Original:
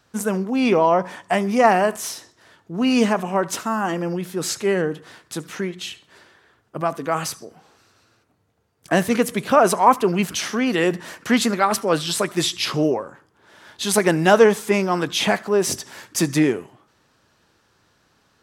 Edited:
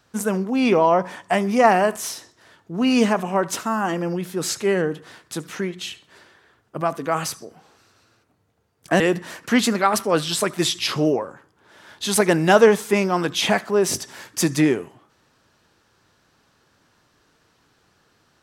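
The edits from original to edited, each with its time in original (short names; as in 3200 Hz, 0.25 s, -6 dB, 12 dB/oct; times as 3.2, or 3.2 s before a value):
9–10.78 cut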